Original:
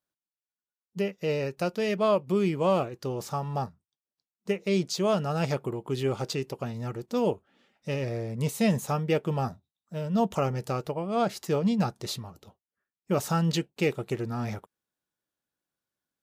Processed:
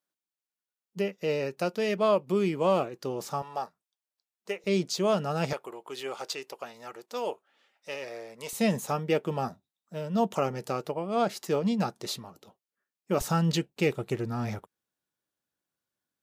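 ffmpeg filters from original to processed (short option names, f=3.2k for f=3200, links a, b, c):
-af "asetnsamples=n=441:p=0,asendcmd='3.42 highpass f 510;4.64 highpass f 160;5.53 highpass f 630;8.53 highpass f 190;13.21 highpass f 49',highpass=180"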